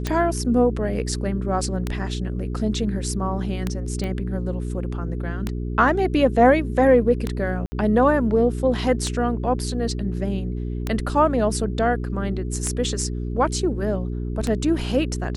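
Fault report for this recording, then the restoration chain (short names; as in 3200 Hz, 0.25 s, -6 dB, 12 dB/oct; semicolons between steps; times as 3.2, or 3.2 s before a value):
hum 60 Hz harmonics 7 -27 dBFS
tick 33 1/3 rpm -10 dBFS
4.04 pop -17 dBFS
7.66–7.72 gap 60 ms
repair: de-click; de-hum 60 Hz, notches 7; interpolate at 7.66, 60 ms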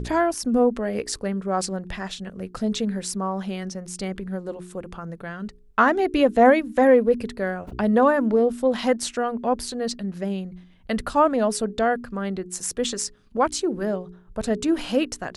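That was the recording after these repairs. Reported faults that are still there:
none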